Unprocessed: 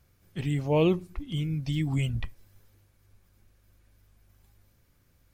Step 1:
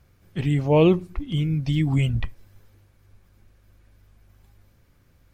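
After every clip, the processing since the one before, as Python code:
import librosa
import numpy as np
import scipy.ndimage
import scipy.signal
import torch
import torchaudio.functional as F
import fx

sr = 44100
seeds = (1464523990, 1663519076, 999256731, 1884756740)

y = fx.high_shelf(x, sr, hz=4700.0, db=-8.0)
y = y * 10.0 ** (6.5 / 20.0)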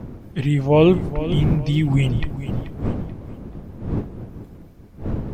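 y = fx.dmg_wind(x, sr, seeds[0], corner_hz=210.0, level_db=-31.0)
y = fx.echo_feedback(y, sr, ms=434, feedback_pct=33, wet_db=-13.5)
y = y * 10.0 ** (3.0 / 20.0)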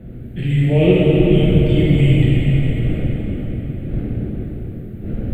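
y = fx.fixed_phaser(x, sr, hz=2400.0, stages=4)
y = fx.rev_plate(y, sr, seeds[1], rt60_s=4.7, hf_ratio=0.75, predelay_ms=0, drr_db=-9.5)
y = y * 10.0 ** (-4.0 / 20.0)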